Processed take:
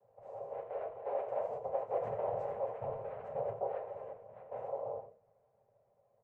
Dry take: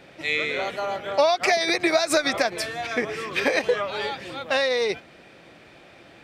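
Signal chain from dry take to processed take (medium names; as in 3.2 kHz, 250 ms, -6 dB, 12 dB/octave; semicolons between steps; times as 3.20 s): Doppler pass-by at 1.99 s, 38 m/s, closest 3.6 m; resonant high shelf 1.7 kHz -12 dB, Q 1.5; delay 88 ms -10 dB; reverse; compression 10:1, threshold -43 dBFS, peak gain reduction 24.5 dB; reverse; noise-vocoded speech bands 4; FFT filter 140 Hz 0 dB, 310 Hz -25 dB, 490 Hz +8 dB, 3.4 kHz -27 dB; on a send at -2.5 dB: reverberation RT60 0.35 s, pre-delay 3 ms; on the sum: trim +6.5 dB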